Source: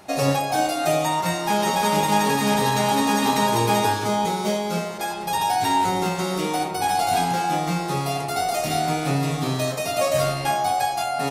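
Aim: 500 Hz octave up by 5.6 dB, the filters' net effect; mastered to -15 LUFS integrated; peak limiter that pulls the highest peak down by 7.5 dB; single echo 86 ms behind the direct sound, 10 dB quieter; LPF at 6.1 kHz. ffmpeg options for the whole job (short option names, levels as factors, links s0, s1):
-af "lowpass=6100,equalizer=f=500:t=o:g=7.5,alimiter=limit=0.266:level=0:latency=1,aecho=1:1:86:0.316,volume=1.88"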